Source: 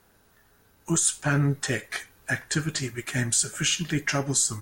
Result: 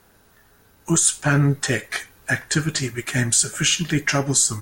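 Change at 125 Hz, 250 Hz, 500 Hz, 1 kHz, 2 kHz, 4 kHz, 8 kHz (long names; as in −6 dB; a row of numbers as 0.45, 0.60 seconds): +5.5, +5.5, +5.5, +5.5, +5.5, +5.5, +5.5 decibels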